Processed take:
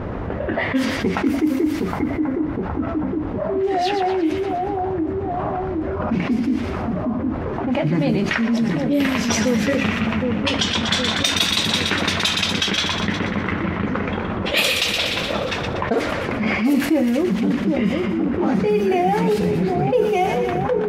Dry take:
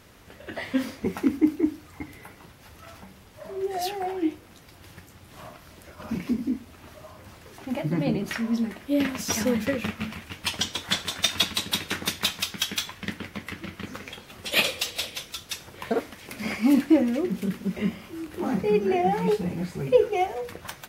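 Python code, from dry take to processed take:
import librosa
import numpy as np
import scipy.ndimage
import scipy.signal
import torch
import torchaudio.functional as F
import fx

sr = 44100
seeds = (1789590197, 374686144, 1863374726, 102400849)

y = fx.env_lowpass(x, sr, base_hz=870.0, full_db=-19.0)
y = fx.echo_split(y, sr, split_hz=1300.0, low_ms=765, high_ms=120, feedback_pct=52, wet_db=-10)
y = fx.env_flatten(y, sr, amount_pct=70)
y = y * 10.0 ** (-1.5 / 20.0)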